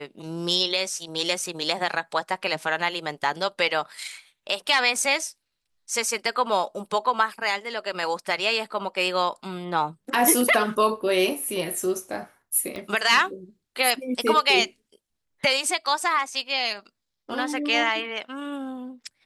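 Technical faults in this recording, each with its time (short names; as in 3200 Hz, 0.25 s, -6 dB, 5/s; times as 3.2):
12.76 pop -21 dBFS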